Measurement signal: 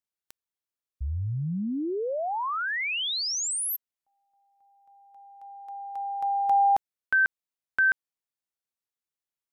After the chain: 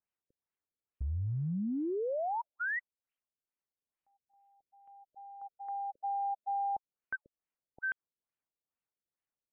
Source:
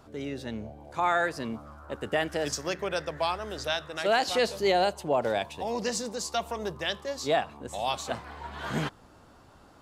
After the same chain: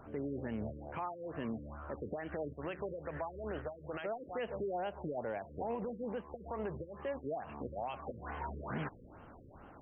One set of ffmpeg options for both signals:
-af "acompressor=threshold=-32dB:ratio=12:attack=0.11:release=113:knee=1:detection=rms,afftfilt=real='re*lt(b*sr/1024,550*pow(3300/550,0.5+0.5*sin(2*PI*2.3*pts/sr)))':imag='im*lt(b*sr/1024,550*pow(3300/550,0.5+0.5*sin(2*PI*2.3*pts/sr)))':win_size=1024:overlap=0.75,volume=1dB"

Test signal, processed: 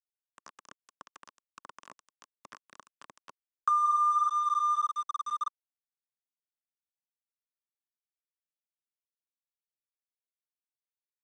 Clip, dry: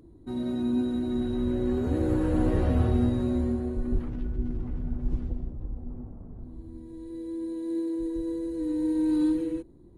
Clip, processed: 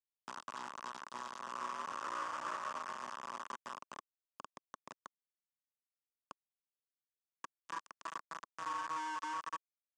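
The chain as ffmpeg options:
-filter_complex "[0:a]aeval=exprs='val(0)+0.5*0.0133*sgn(val(0))':c=same,aphaser=in_gain=1:out_gain=1:delay=3.4:decay=0.24:speed=1.6:type=sinusoidal,asuperstop=centerf=820:order=12:qfactor=2,afftdn=nr=23:nf=-34,asplit=2[a][b];[b]adelay=13,volume=-5dB[c];[a][c]amix=inputs=2:normalize=0,aecho=1:1:141|282|423|564:0.112|0.0516|0.0237|0.0109,acrossover=split=520|2300[d][e][f];[d]acompressor=threshold=-34dB:ratio=16[g];[g][e][f]amix=inputs=3:normalize=0,aeval=exprs='val(0)*gte(abs(val(0)),0.0355)':c=same,equalizer=f=3.3k:t=o:w=0.77:g=-2,acrossover=split=790|2300[h][i][j];[h]acompressor=threshold=-48dB:ratio=4[k];[i]acompressor=threshold=-32dB:ratio=4[l];[j]acompressor=threshold=-47dB:ratio=4[m];[k][l][m]amix=inputs=3:normalize=0,highpass=270,equalizer=f=330:t=q:w=4:g=-8,equalizer=f=470:t=q:w=4:g=-8,equalizer=f=740:t=q:w=4:g=-8,equalizer=f=1.1k:t=q:w=4:g=9,equalizer=f=2.2k:t=q:w=4:g=-8,equalizer=f=4.1k:t=q:w=4:g=-9,lowpass=f=7.6k:w=0.5412,lowpass=f=7.6k:w=1.3066"

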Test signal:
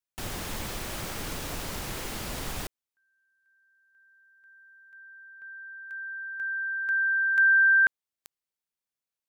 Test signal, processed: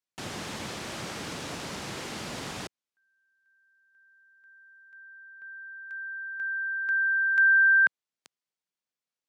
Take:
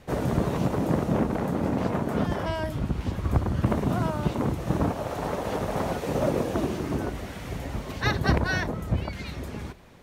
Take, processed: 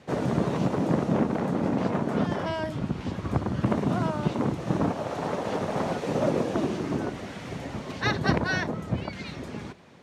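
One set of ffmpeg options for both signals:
-af "highpass=150,lowpass=7k,bass=f=250:g=3,treble=f=4k:g=1"

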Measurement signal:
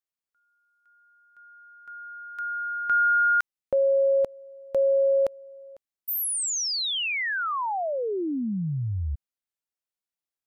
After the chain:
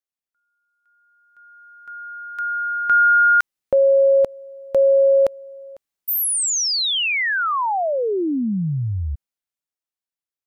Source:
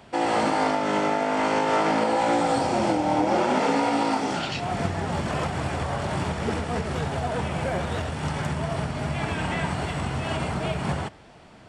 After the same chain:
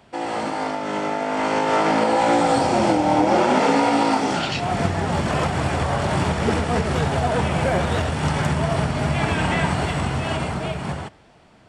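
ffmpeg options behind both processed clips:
-af "dynaudnorm=f=140:g=21:m=10dB,volume=-3dB"

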